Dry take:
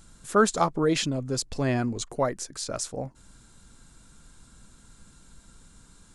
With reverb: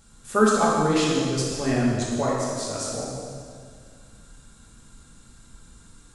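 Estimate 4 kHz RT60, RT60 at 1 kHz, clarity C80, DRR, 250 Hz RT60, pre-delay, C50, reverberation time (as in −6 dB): 1.9 s, 2.0 s, 1.0 dB, −5.5 dB, 2.3 s, 3 ms, −1.0 dB, 2.1 s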